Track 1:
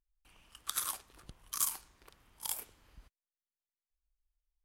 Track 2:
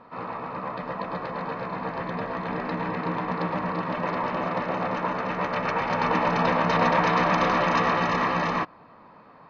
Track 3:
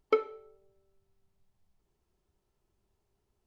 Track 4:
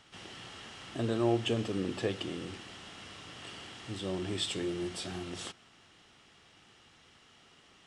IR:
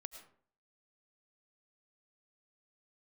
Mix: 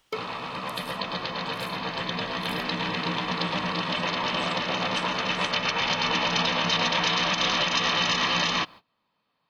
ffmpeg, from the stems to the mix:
-filter_complex "[0:a]volume=0.158[s0];[1:a]equalizer=f=3200:w=2.1:g=13,agate=range=0.0562:threshold=0.00794:ratio=16:detection=peak,volume=0.668[s1];[2:a]volume=0.355[s2];[3:a]volume=0.237[s3];[s0][s3]amix=inputs=2:normalize=0,acompressor=threshold=0.00282:ratio=6,volume=1[s4];[s1][s2]amix=inputs=2:normalize=0,bass=f=250:g=3,treble=f=4000:g=15,alimiter=limit=0.133:level=0:latency=1:release=128,volume=1[s5];[s4][s5]amix=inputs=2:normalize=0,highshelf=f=2100:g=8"

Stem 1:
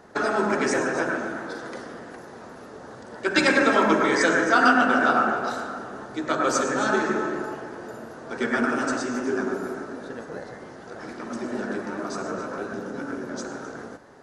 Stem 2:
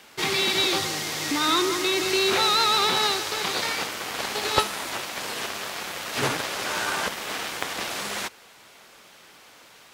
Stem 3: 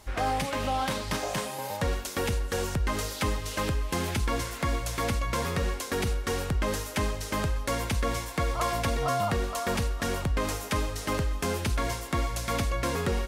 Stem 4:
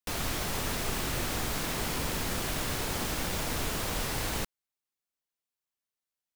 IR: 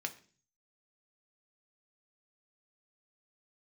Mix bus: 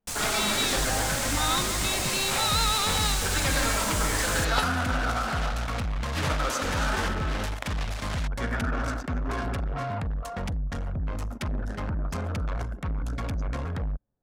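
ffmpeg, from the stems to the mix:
-filter_complex "[0:a]alimiter=limit=0.224:level=0:latency=1:release=175,volume=0.531[s0];[1:a]volume=0.562[s1];[2:a]lowshelf=f=140:g=11.5,asoftclip=type=tanh:threshold=0.0501,adelay=700,volume=0.944[s2];[3:a]equalizer=f=7800:w=1:g=13,volume=0.708[s3];[s0][s1][s2][s3]amix=inputs=4:normalize=0,equalizer=f=370:w=2.7:g=-9.5,anlmdn=15.8"

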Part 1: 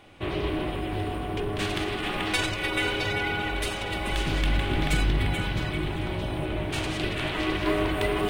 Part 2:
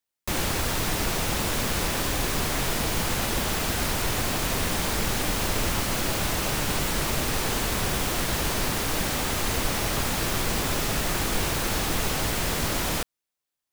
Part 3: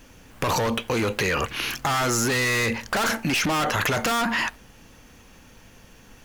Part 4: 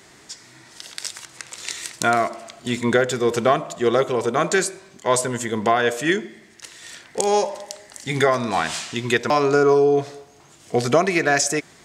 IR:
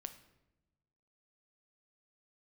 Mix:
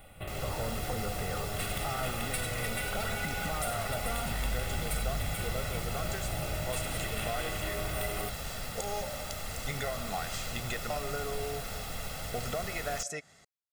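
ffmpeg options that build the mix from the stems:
-filter_complex "[0:a]aexciter=amount=3.4:drive=9.6:freq=8300,volume=0.531[s0];[1:a]bandreject=f=6200:w=18,volume=0.112[s1];[2:a]lowpass=1100,volume=0.422[s2];[3:a]adelay=1600,volume=0.168[s3];[s0][s2][s3]amix=inputs=3:normalize=0,acompressor=threshold=0.01:ratio=4,volume=1[s4];[s1][s4]amix=inputs=2:normalize=0,aecho=1:1:1.5:0.65,dynaudnorm=f=160:g=5:m=1.68"

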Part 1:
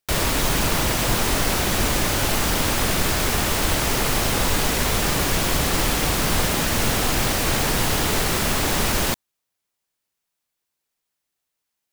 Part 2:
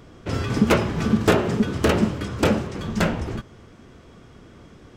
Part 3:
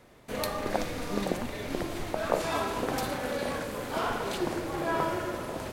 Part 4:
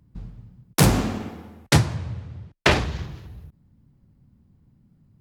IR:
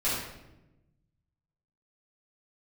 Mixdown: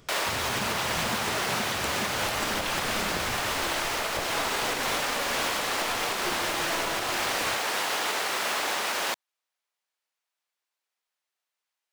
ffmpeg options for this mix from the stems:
-filter_complex "[0:a]highpass=630,highshelf=f=6800:g=-11.5,volume=0.944[s0];[1:a]highshelf=f=2400:g=11,acompressor=threshold=0.0891:ratio=6,volume=0.282,asplit=2[s1][s2];[s2]volume=0.168[s3];[2:a]aeval=exprs='0.299*(cos(1*acos(clip(val(0)/0.299,-1,1)))-cos(1*PI/2))+0.075*(cos(4*acos(clip(val(0)/0.299,-1,1)))-cos(4*PI/2))':c=same,adelay=1850,volume=0.631[s4];[3:a]acompressor=threshold=0.0447:ratio=6,bandpass=f=3200:t=q:w=3.8:csg=0,volume=1.33[s5];[4:a]atrim=start_sample=2205[s6];[s3][s6]afir=irnorm=-1:irlink=0[s7];[s0][s1][s4][s5][s7]amix=inputs=5:normalize=0,alimiter=limit=0.133:level=0:latency=1:release=208"

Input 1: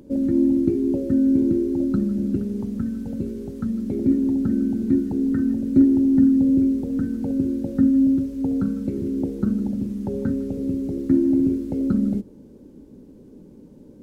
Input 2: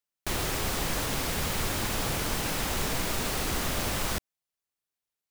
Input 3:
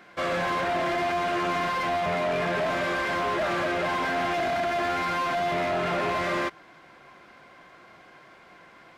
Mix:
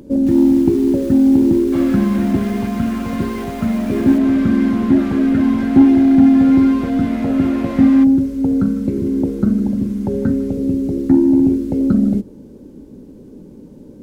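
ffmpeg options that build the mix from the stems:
-filter_complex "[0:a]acontrast=57,volume=1.12[s0];[1:a]alimiter=level_in=1.26:limit=0.0631:level=0:latency=1:release=410,volume=0.794,aeval=exprs='0.0501*sin(PI/2*2.51*val(0)/0.0501)':c=same,volume=0.224[s1];[2:a]adelay=1550,volume=0.562[s2];[s0][s1][s2]amix=inputs=3:normalize=0"

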